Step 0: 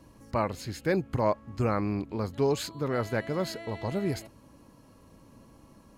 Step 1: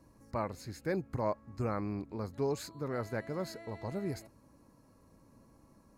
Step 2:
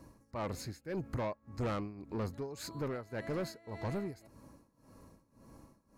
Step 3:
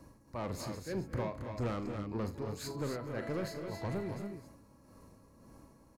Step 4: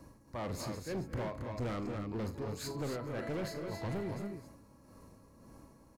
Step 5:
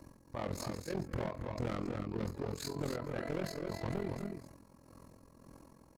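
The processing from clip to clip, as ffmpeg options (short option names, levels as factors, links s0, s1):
-af "equalizer=f=3100:t=o:w=0.46:g=-12,volume=0.447"
-af "tremolo=f=1.8:d=0.89,asoftclip=type=tanh:threshold=0.0133,volume=2.11"
-filter_complex "[0:a]acrossover=split=410[s0][s1];[s1]acompressor=threshold=0.0141:ratio=6[s2];[s0][s2]amix=inputs=2:normalize=0,asplit=2[s3][s4];[s4]aecho=0:1:42|78|216|246|275:0.266|0.133|0.141|0.282|0.447[s5];[s3][s5]amix=inputs=2:normalize=0"
-af "asoftclip=type=hard:threshold=0.02,volume=1.12"
-af "tremolo=f=43:d=0.889,volume=1.5"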